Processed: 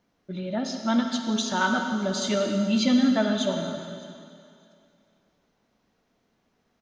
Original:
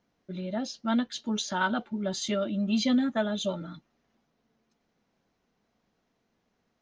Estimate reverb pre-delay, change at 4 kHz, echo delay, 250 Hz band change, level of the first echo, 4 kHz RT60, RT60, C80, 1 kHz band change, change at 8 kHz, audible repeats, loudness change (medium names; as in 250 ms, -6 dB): 38 ms, +4.5 dB, 612 ms, +4.5 dB, -22.0 dB, 2.4 s, 2.4 s, 5.0 dB, +4.5 dB, no reading, 1, +4.5 dB